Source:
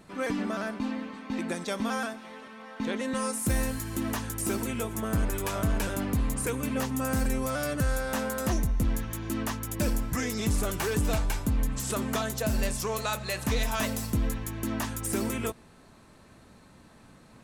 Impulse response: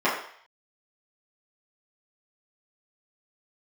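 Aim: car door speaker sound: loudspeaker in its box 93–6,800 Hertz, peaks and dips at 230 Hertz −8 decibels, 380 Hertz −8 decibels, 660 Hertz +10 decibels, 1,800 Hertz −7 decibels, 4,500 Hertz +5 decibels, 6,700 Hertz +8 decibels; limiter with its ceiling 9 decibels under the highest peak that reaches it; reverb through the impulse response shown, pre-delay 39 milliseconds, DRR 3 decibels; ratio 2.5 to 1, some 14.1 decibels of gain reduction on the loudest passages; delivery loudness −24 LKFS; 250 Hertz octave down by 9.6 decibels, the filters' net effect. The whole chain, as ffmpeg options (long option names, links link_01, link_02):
-filter_complex "[0:a]equalizer=frequency=250:width_type=o:gain=-6,acompressor=threshold=-46dB:ratio=2.5,alimiter=level_in=14.5dB:limit=-24dB:level=0:latency=1,volume=-14.5dB,asplit=2[link_01][link_02];[1:a]atrim=start_sample=2205,adelay=39[link_03];[link_02][link_03]afir=irnorm=-1:irlink=0,volume=-20dB[link_04];[link_01][link_04]amix=inputs=2:normalize=0,highpass=93,equalizer=frequency=230:width_type=q:width=4:gain=-8,equalizer=frequency=380:width_type=q:width=4:gain=-8,equalizer=frequency=660:width_type=q:width=4:gain=10,equalizer=frequency=1800:width_type=q:width=4:gain=-7,equalizer=frequency=4500:width_type=q:width=4:gain=5,equalizer=frequency=6700:width_type=q:width=4:gain=8,lowpass=frequency=6800:width=0.5412,lowpass=frequency=6800:width=1.3066,volume=23dB"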